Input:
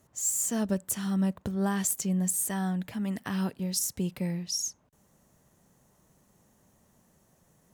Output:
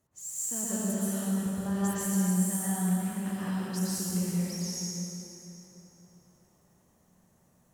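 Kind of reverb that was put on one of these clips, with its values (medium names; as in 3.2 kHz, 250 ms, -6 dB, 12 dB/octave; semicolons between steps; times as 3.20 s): plate-style reverb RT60 3.7 s, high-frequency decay 0.7×, pre-delay 105 ms, DRR -9.5 dB; trim -11.5 dB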